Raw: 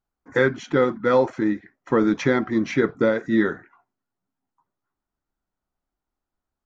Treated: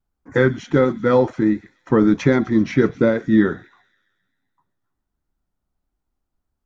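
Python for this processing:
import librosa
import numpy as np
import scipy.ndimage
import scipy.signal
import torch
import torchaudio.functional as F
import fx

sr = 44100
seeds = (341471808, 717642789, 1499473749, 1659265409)

y = fx.low_shelf(x, sr, hz=260.0, db=10.5)
y = fx.echo_wet_highpass(y, sr, ms=130, feedback_pct=61, hz=3500.0, wet_db=-13.5)
y = fx.vibrato(y, sr, rate_hz=1.4, depth_cents=42.0)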